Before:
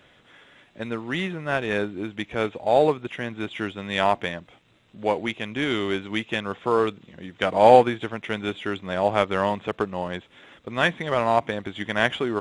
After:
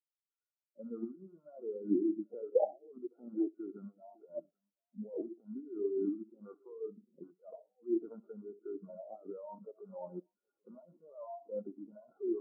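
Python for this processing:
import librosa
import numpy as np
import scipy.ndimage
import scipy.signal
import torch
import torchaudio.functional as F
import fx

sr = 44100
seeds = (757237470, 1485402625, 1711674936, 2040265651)

p1 = fx.rattle_buzz(x, sr, strikes_db=-35.0, level_db=-14.0)
p2 = scipy.signal.sosfilt(scipy.signal.butter(2, 250.0, 'highpass', fs=sr, output='sos'), p1)
p3 = fx.over_compress(p2, sr, threshold_db=-33.0, ratio=-1.0)
p4 = fx.brickwall_lowpass(p3, sr, high_hz=1500.0)
p5 = p4 + fx.echo_multitap(p4, sr, ms=(67, 116, 561, 784), db=(-8.0, -14.0, -16.0, -10.0), dry=0)
p6 = fx.spectral_expand(p5, sr, expansion=4.0)
y = F.gain(torch.from_numpy(p6), 1.5).numpy()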